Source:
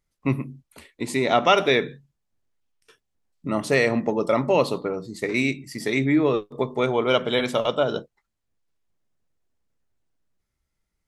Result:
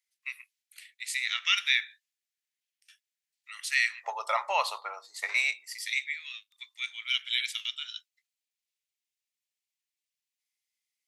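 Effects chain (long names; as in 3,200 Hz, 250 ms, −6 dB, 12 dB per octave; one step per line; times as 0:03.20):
Butterworth high-pass 1,800 Hz 36 dB per octave, from 0:04.03 760 Hz, from 0:05.73 2,100 Hz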